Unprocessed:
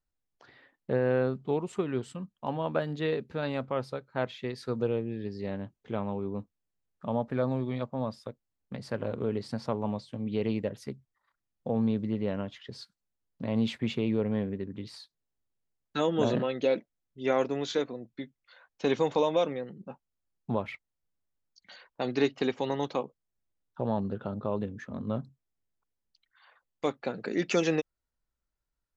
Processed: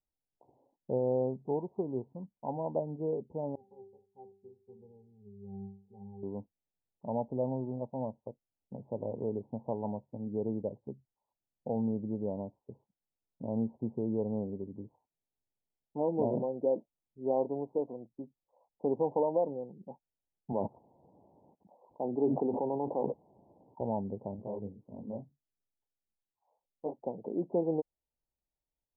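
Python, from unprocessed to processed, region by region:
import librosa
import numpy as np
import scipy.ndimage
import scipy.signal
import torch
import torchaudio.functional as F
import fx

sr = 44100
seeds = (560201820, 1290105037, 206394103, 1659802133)

y = fx.chain(x, sr, fx.octave_resonator(note='G', decay_s=0.45),
    fx.echo_single(ms=72, db=-15.5), at=(3.55, 6.23))
y = fx.chain(y, sr, fx.highpass(hz=150.0, slope=12),
    fx.sustainer(db_per_s=21.0), at=(20.52, 23.81))
y = fx.chain(y, sr, fx.lowpass(hz=1000.0, slope=12),
    fx.detune_double(cents=59), at=(24.36, 26.99))
y = scipy.signal.sosfilt(scipy.signal.butter(16, 940.0, 'lowpass', fs=sr, output='sos'), y)
y = fx.tilt_eq(y, sr, slope=1.5)
y = y * 10.0 ** (-1.5 / 20.0)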